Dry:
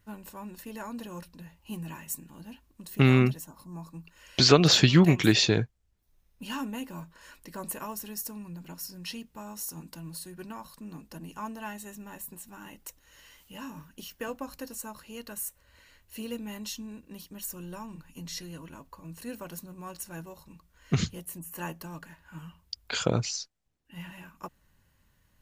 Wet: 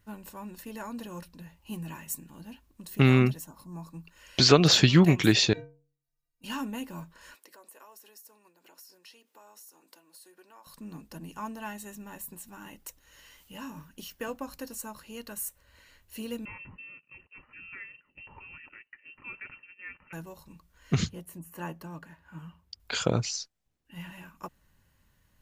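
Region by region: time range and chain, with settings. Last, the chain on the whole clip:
5.53–6.44 s: band-stop 3.3 kHz, Q 9.6 + inharmonic resonator 140 Hz, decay 0.53 s, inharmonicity 0.03
7.35–10.67 s: compression 8:1, threshold -48 dBFS + high-pass 360 Hz 24 dB/octave
16.45–20.13 s: high-pass 410 Hz 6 dB/octave + gate -52 dBFS, range -9 dB + frequency inversion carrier 2.9 kHz
21.09–22.80 s: high-pass 57 Hz + treble shelf 2.7 kHz -9 dB
whole clip: none

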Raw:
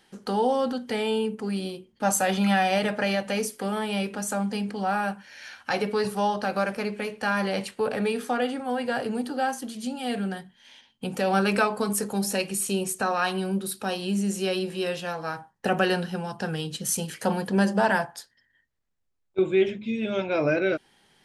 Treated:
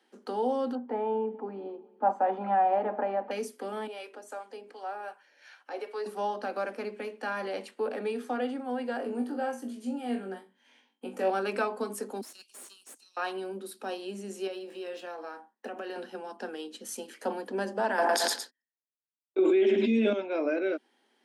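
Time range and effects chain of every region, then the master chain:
0.75–3.31 s: low-pass 1.2 kHz + peaking EQ 880 Hz +11 dB 0.71 oct + feedback delay 198 ms, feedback 54%, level -22 dB
3.87–6.06 s: high-pass 340 Hz 24 dB/octave + harmonic tremolo 2.7 Hz, crossover 630 Hz
8.97–11.30 s: peaking EQ 4 kHz -6.5 dB 1.1 oct + flutter echo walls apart 3.6 m, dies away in 0.24 s
12.21–13.17 s: inverse Chebyshev high-pass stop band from 1.7 kHz + valve stage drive 30 dB, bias 0.65
14.47–15.96 s: median filter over 3 samples + compression 4:1, threshold -29 dBFS + doubling 23 ms -11.5 dB
17.98–20.13 s: gate -59 dBFS, range -55 dB + feedback delay 110 ms, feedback 21%, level -13 dB + level flattener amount 100%
whole clip: steep high-pass 230 Hz 72 dB/octave; tilt EQ -2 dB/octave; trim -7 dB

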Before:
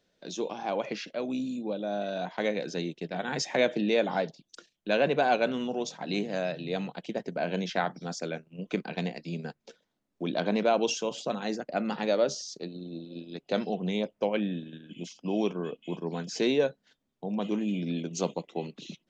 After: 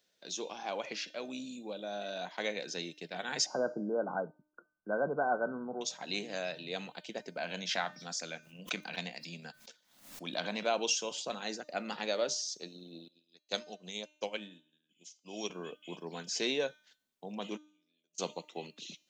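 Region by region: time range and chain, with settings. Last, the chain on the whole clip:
3.46–5.81 s: brick-wall FIR low-pass 1.6 kHz + bass shelf 160 Hz +8 dB
7.38–10.66 s: peaking EQ 400 Hz -8.5 dB 0.63 oct + swell ahead of each attack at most 100 dB/s
13.08–15.50 s: peaking EQ 6.8 kHz +13.5 dB 1.2 oct + upward expansion 2.5:1, over -40 dBFS
17.56–18.18 s: tone controls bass -10 dB, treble +10 dB + whistle 610 Hz -51 dBFS + inverted gate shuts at -31 dBFS, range -37 dB
whole clip: tilt EQ +3 dB/octave; de-hum 303.2 Hz, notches 33; trim -5 dB

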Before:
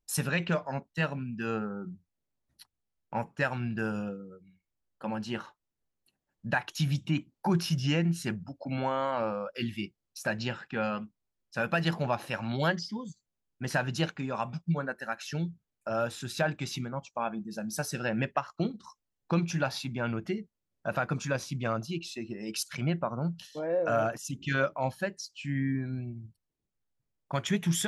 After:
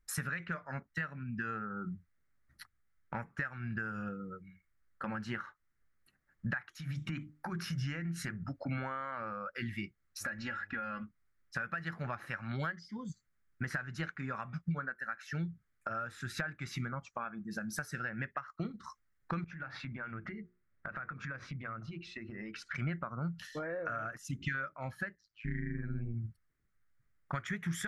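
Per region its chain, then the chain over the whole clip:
6.66–8.44 s: compression 4:1, threshold -35 dBFS + hum notches 50/100/150/200/250/300/350/400 Hz
10.20–11.02 s: comb 3.6 ms, depth 79% + compression 3:1, threshold -32 dBFS + mains buzz 100 Hz, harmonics 9, -60 dBFS -6 dB/octave
19.44–22.75 s: low-pass 2.8 kHz + compression 12:1, threshold -42 dBFS + hum notches 60/120/180/240/300/360/420/480 Hz
25.15–26.14 s: AM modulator 110 Hz, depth 80% + tape spacing loss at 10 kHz 33 dB
whole clip: high-order bell 1.6 kHz +15 dB 1.1 oct; compression 5:1, threshold -37 dBFS; bass shelf 160 Hz +12 dB; trim -1.5 dB

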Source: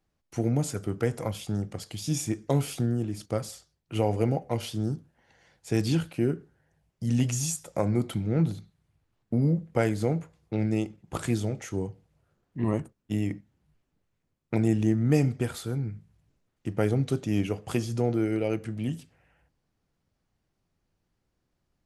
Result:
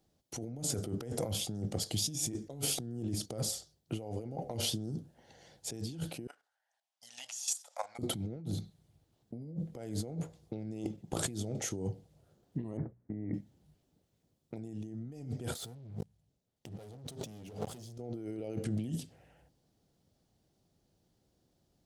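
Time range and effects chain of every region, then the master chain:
6.27–7.99 s: inverse Chebyshev high-pass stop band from 410 Hz + treble shelf 7.6 kHz -10 dB + level held to a coarse grid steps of 12 dB
12.77–13.34 s: steep low-pass 2.2 kHz 96 dB/octave + hum notches 60/120/180 Hz
15.55–17.98 s: peaking EQ 320 Hz -6 dB 0.35 oct + waveshaping leveller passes 5
whole clip: high-pass 95 Hz 6 dB/octave; high-order bell 1.6 kHz -9 dB; compressor with a negative ratio -37 dBFS, ratio -1; trim -3 dB

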